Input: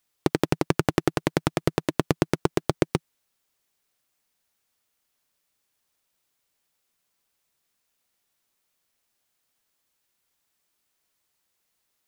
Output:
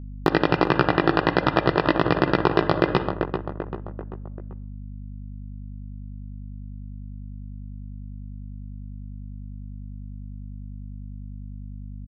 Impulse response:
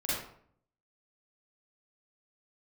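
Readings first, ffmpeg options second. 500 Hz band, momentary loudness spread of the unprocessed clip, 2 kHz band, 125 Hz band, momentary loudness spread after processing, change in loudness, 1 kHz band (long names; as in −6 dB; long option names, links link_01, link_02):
+5.0 dB, 3 LU, +8.5 dB, +3.5 dB, 18 LU, +4.0 dB, +9.0 dB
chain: -filter_complex "[0:a]dynaudnorm=framelen=970:gausssize=5:maxgain=11.5dB,aresample=11025,acrusher=bits=6:mix=0:aa=0.000001,aresample=44100,asuperstop=centerf=2200:order=20:qfactor=6.5,equalizer=frequency=1300:width_type=o:width=2.6:gain=9.5,agate=range=-6dB:threshold=-45dB:ratio=16:detection=peak,asplit=2[link_01][link_02];[link_02]lowpass=3200[link_03];[1:a]atrim=start_sample=2205[link_04];[link_03][link_04]afir=irnorm=-1:irlink=0,volume=-25dB[link_05];[link_01][link_05]amix=inputs=2:normalize=0,flanger=delay=15.5:depth=2.8:speed=1.3,aeval=exprs='val(0)+0.00398*(sin(2*PI*50*n/s)+sin(2*PI*2*50*n/s)/2+sin(2*PI*3*50*n/s)/3+sin(2*PI*4*50*n/s)/4+sin(2*PI*5*50*n/s)/5)':channel_layout=same,asplit=2[link_06][link_07];[link_07]adelay=390,lowpass=frequency=1800:poles=1,volume=-17.5dB,asplit=2[link_08][link_09];[link_09]adelay=390,lowpass=frequency=1800:poles=1,volume=0.52,asplit=2[link_10][link_11];[link_11]adelay=390,lowpass=frequency=1800:poles=1,volume=0.52,asplit=2[link_12][link_13];[link_13]adelay=390,lowpass=frequency=1800:poles=1,volume=0.52[link_14];[link_06][link_08][link_10][link_12][link_14]amix=inputs=5:normalize=0,alimiter=level_in=14dB:limit=-1dB:release=50:level=0:latency=1,volume=-1dB"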